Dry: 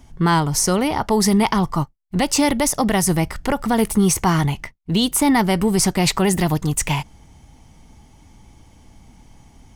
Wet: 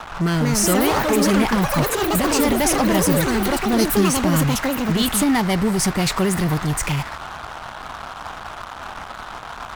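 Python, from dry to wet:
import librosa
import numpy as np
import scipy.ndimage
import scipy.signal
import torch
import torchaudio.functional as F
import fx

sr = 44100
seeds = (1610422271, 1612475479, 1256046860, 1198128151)

p1 = fx.rotary_switch(x, sr, hz=1.0, then_hz=6.0, switch_at_s=3.19)
p2 = fx.dmg_noise_band(p1, sr, seeds[0], low_hz=640.0, high_hz=1500.0, level_db=-38.0)
p3 = fx.fuzz(p2, sr, gain_db=37.0, gate_db=-36.0)
p4 = p2 + (p3 * 10.0 ** (-8.5 / 20.0))
p5 = fx.echo_pitch(p4, sr, ms=266, semitones=6, count=3, db_per_echo=-3.0)
y = p5 * 10.0 ** (-4.0 / 20.0)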